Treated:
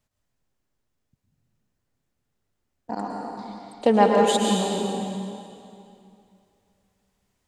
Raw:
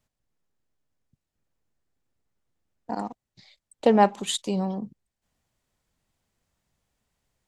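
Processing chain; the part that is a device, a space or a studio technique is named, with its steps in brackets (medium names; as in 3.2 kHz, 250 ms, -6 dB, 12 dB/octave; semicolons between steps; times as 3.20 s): stairwell (reverberation RT60 2.6 s, pre-delay 101 ms, DRR -1.5 dB)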